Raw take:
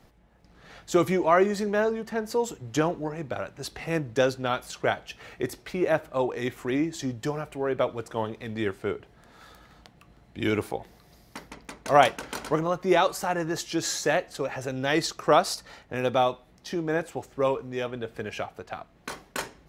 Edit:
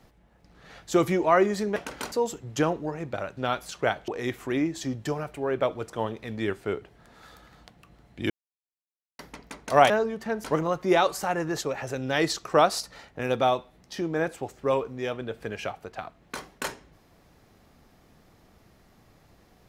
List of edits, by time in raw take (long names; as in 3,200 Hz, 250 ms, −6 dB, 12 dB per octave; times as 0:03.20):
0:01.76–0:02.30: swap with 0:12.08–0:12.44
0:03.55–0:04.38: remove
0:05.09–0:06.26: remove
0:10.48–0:11.37: silence
0:13.62–0:14.36: remove